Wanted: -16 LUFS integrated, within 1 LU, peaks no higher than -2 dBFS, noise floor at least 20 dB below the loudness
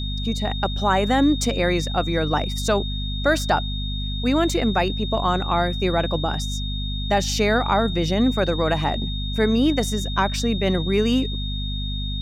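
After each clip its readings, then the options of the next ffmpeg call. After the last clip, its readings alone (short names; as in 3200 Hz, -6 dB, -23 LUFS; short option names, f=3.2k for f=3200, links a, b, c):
hum 50 Hz; harmonics up to 250 Hz; hum level -25 dBFS; steady tone 3700 Hz; tone level -31 dBFS; loudness -22.0 LUFS; peak -6.5 dBFS; loudness target -16.0 LUFS
-> -af "bandreject=f=50:t=h:w=4,bandreject=f=100:t=h:w=4,bandreject=f=150:t=h:w=4,bandreject=f=200:t=h:w=4,bandreject=f=250:t=h:w=4"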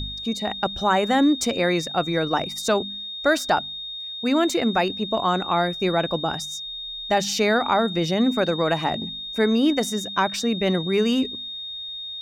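hum none; steady tone 3700 Hz; tone level -31 dBFS
-> -af "bandreject=f=3.7k:w=30"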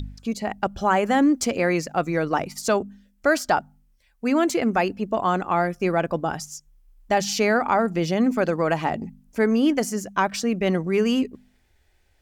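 steady tone none; loudness -23.0 LUFS; peak -7.5 dBFS; loudness target -16.0 LUFS
-> -af "volume=7dB,alimiter=limit=-2dB:level=0:latency=1"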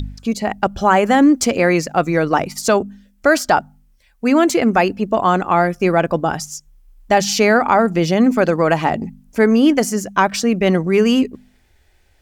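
loudness -16.0 LUFS; peak -2.0 dBFS; noise floor -56 dBFS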